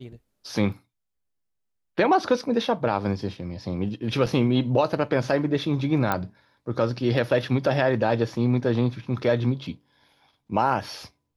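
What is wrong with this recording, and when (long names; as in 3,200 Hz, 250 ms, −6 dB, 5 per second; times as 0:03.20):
0:04.26: drop-out 4.8 ms
0:06.12: click −10 dBFS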